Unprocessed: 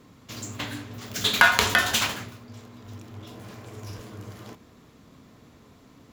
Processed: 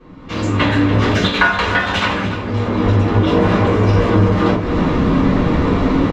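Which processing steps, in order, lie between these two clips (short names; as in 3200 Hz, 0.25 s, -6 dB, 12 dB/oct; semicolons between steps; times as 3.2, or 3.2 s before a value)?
recorder AGC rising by 27 dB/s; LPF 2700 Hz 12 dB/oct; compressor 2:1, threshold -24 dBFS, peak gain reduction 8 dB; echo 0.29 s -13 dB; reverb RT60 0.25 s, pre-delay 3 ms, DRR -8 dB; gain -1 dB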